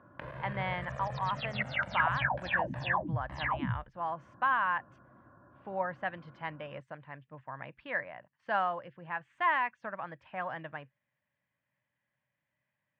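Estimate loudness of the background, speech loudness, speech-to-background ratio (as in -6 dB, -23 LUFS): -34.5 LUFS, -35.5 LUFS, -1.0 dB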